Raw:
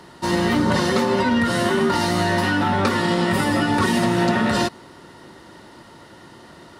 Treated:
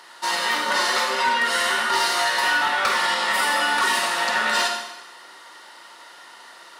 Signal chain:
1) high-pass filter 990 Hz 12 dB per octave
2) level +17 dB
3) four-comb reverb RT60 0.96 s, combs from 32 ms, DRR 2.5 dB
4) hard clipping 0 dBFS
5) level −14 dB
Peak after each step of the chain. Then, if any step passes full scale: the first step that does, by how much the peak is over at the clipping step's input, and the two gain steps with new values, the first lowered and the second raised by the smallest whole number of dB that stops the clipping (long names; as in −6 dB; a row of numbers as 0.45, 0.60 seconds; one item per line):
−11.0, +6.0, +6.5, 0.0, −14.0 dBFS
step 2, 6.5 dB
step 2 +10 dB, step 5 −7 dB